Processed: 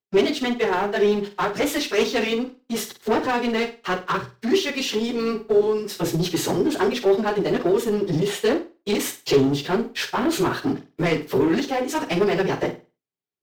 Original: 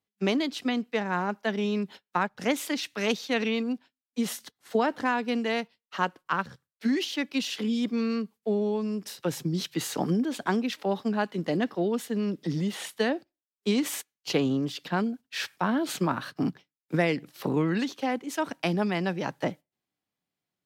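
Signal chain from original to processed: notches 50/100/150/200/250/300/350/400/450/500 Hz; plain phase-vocoder stretch 0.65×; sample leveller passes 3; thirty-one-band EQ 125 Hz +7 dB, 200 Hz -6 dB, 400 Hz +11 dB, 10000 Hz -5 dB; flutter echo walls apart 8.4 m, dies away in 0.3 s

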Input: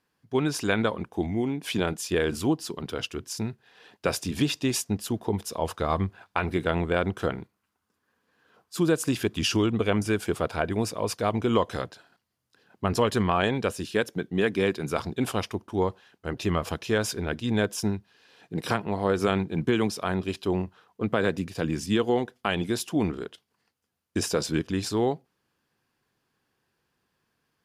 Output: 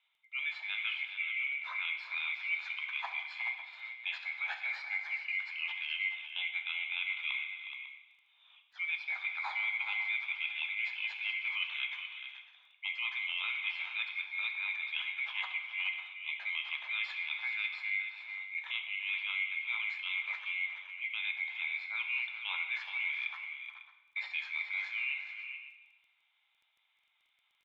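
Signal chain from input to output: band-swap scrambler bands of 2000 Hz; reverse; compressor 6:1, threshold -34 dBFS, peak gain reduction 16 dB; reverse; elliptic band-pass 820–3600 Hz, stop band 50 dB; tapped delay 0.362/0.425/0.549 s -14.5/-10/-15.5 dB; on a send at -4.5 dB: reverb RT60 1.0 s, pre-delay 3 ms; on the sum: crackle 10/s -60 dBFS

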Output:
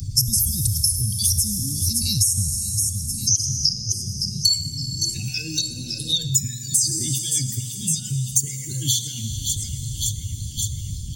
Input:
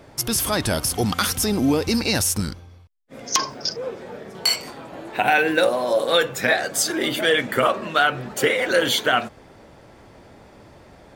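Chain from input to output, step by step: spectral contrast raised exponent 1.9; elliptic band-stop 120–6100 Hz, stop band 70 dB; notches 60/120/180/240 Hz; feedback echo 0.563 s, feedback 55%, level -18 dB; Schroeder reverb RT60 1.6 s, combs from 26 ms, DRR 10.5 dB; maximiser +18 dB; three-band squash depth 100%; gain -4 dB

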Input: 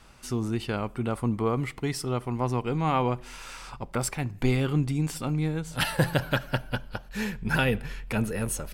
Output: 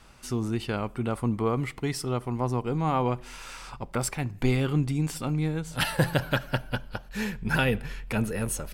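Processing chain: 2.16–3.06 dynamic EQ 2500 Hz, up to -6 dB, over -45 dBFS, Q 1

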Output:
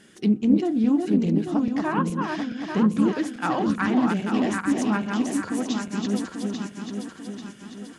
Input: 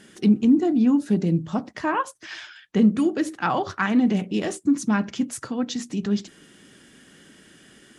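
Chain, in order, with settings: regenerating reverse delay 0.42 s, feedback 68%, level -3.5 dB; Doppler distortion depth 0.15 ms; gain -3 dB

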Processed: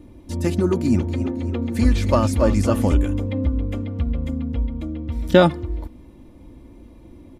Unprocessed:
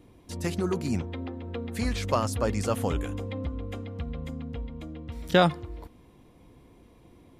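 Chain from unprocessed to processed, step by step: low shelf 480 Hz +10 dB; comb 3.4 ms, depth 51%; 0.7–2.95 warbling echo 0.272 s, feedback 54%, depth 76 cents, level -10.5 dB; gain +1.5 dB

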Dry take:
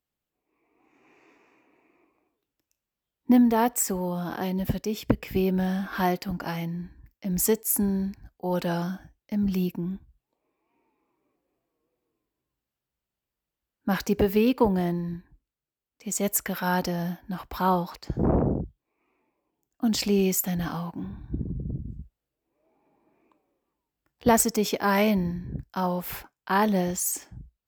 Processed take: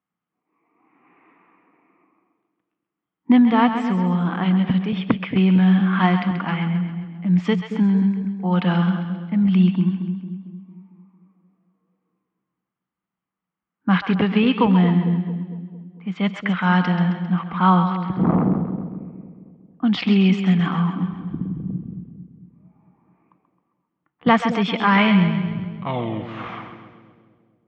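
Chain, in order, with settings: tape stop at the end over 2.50 s; low-pass opened by the level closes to 1400 Hz, open at -18 dBFS; speaker cabinet 170–3400 Hz, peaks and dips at 180 Hz +10 dB, 400 Hz -7 dB, 580 Hz -8 dB, 1200 Hz +8 dB, 2100 Hz +6 dB, 3200 Hz +8 dB; split-band echo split 580 Hz, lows 0.226 s, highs 0.133 s, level -8.5 dB; gain +4.5 dB

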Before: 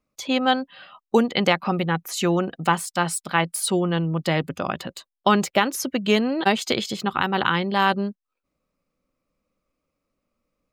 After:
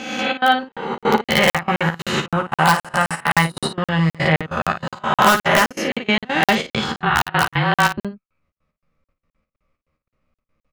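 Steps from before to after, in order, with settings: spectral swells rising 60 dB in 1.23 s; EQ curve 120 Hz 0 dB, 300 Hz -11 dB, 1900 Hz -2 dB, 14000 Hz -24 dB; 6.95–7.98 frequency shift -29 Hz; in parallel at -3.5 dB: wrapped overs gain 11.5 dB; on the sum: step gate "xxx.xx.xx.x." 143 bpm -24 dB; on a send: early reflections 13 ms -5 dB, 55 ms -9 dB; on the sum: crackling interface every 0.26 s, samples 2048, zero, from 0.72; gain +3 dB

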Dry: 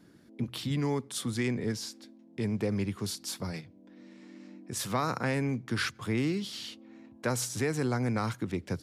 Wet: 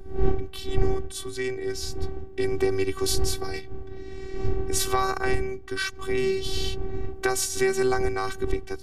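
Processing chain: wind noise 140 Hz -28 dBFS; recorder AGC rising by 6.2 dB/s; robotiser 382 Hz; gain +1 dB

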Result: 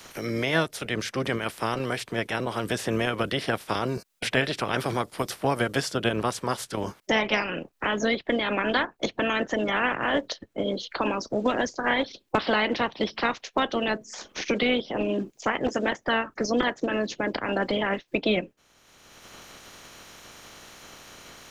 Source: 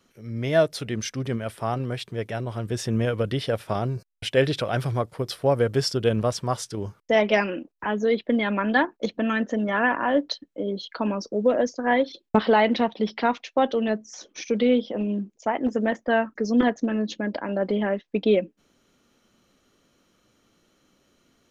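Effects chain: spectral limiter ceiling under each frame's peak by 18 dB; three-band squash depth 70%; gain -2.5 dB

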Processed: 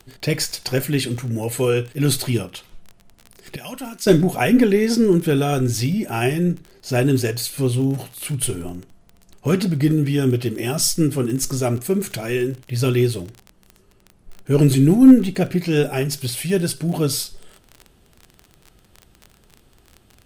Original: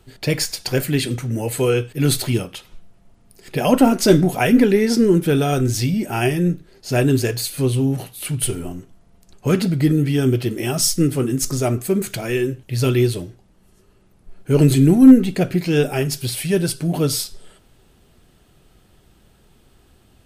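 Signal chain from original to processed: crackle 29/s -27 dBFS; 3.56–4.07 passive tone stack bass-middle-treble 5-5-5; gain -1 dB

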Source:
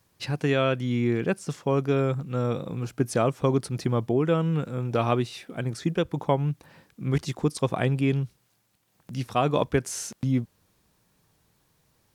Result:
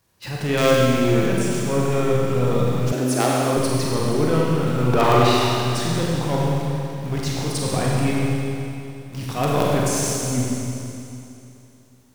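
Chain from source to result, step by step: transient shaper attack -10 dB, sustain +4 dB; 4.78–5.33 overdrive pedal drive 23 dB, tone 1900 Hz, clips at -11 dBFS; in parallel at -11 dB: companded quantiser 2-bit; on the sum: Schroeder reverb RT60 2.8 s, combs from 32 ms, DRR -4 dB; 2.92–3.57 frequency shift +130 Hz

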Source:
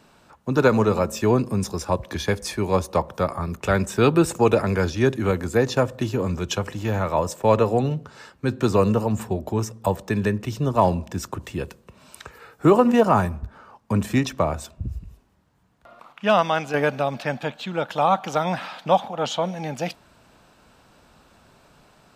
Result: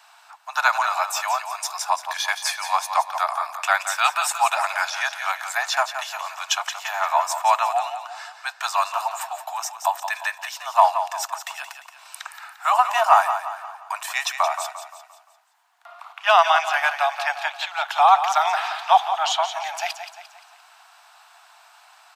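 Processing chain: steep high-pass 680 Hz 96 dB/oct; on a send: feedback echo 0.174 s, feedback 44%, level -9.5 dB; on the sum: gain +6 dB

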